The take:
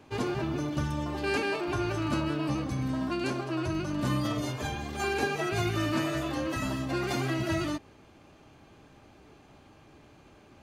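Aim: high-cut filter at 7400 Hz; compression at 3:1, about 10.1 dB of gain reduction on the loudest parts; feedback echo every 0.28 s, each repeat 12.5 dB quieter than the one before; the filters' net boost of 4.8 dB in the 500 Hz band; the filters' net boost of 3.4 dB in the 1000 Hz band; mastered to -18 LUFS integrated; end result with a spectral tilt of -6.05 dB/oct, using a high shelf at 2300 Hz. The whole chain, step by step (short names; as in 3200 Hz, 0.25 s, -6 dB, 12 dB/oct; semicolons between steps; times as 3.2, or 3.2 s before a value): LPF 7400 Hz; bell 500 Hz +6.5 dB; bell 1000 Hz +3.5 dB; high shelf 2300 Hz -6 dB; compressor 3:1, threshold -36 dBFS; feedback echo 0.28 s, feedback 24%, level -12.5 dB; gain +18.5 dB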